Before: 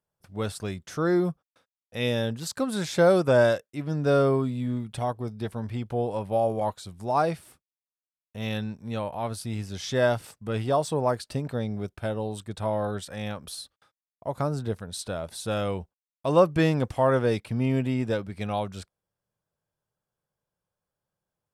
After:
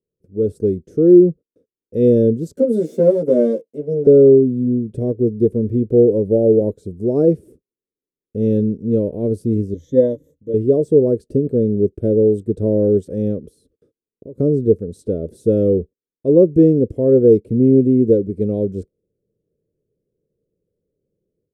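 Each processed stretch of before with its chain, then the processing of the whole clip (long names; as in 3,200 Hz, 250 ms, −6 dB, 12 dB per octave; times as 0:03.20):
0:02.57–0:04.07: lower of the sound and its delayed copy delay 1.4 ms + high-pass filter 210 Hz 24 dB per octave + double-tracking delay 13 ms −2 dB
0:09.74–0:10.54: EQ curve with evenly spaced ripples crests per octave 1.1, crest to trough 16 dB + expander for the loud parts, over −38 dBFS
0:13.39–0:14.39: parametric band 740 Hz −8 dB 0.37 octaves + downward compressor 2.5 to 1, threshold −49 dBFS
whole clip: drawn EQ curve 140 Hz 0 dB, 440 Hz +12 dB, 790 Hz −21 dB, 1,100 Hz −23 dB, 1,700 Hz −21 dB; automatic gain control gain up to 11 dB; flat-topped bell 1,900 Hz −8.5 dB 2.9 octaves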